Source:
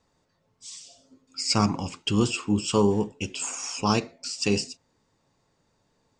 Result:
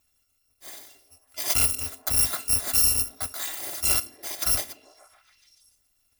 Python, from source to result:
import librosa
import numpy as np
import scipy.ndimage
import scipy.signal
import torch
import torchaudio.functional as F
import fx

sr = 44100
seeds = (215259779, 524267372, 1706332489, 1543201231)

y = fx.bit_reversed(x, sr, seeds[0], block=256)
y = fx.echo_stepped(y, sr, ms=143, hz=250.0, octaves=0.7, feedback_pct=70, wet_db=-10.5)